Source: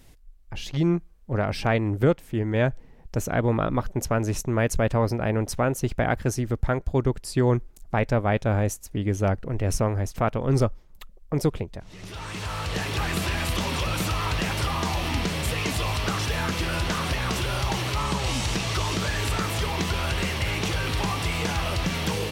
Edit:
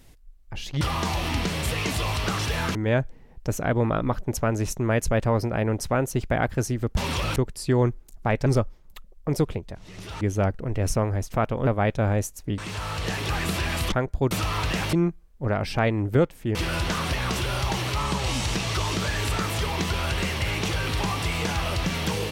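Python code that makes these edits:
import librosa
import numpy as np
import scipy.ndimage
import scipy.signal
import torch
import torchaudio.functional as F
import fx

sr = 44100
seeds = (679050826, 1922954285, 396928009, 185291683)

y = fx.edit(x, sr, fx.swap(start_s=0.81, length_s=1.62, other_s=14.61, other_length_s=1.94),
    fx.swap(start_s=6.65, length_s=0.39, other_s=13.6, other_length_s=0.39),
    fx.swap(start_s=8.14, length_s=0.91, other_s=10.51, other_length_s=1.75), tone=tone)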